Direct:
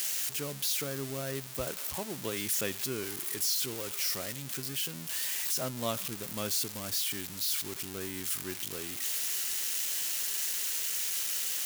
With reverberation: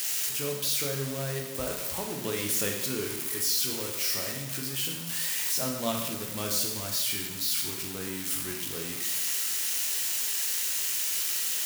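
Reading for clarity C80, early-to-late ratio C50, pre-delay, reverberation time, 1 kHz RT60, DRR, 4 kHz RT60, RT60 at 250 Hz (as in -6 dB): 7.0 dB, 4.5 dB, 6 ms, 1.0 s, 1.0 s, 0.5 dB, 0.95 s, 1.0 s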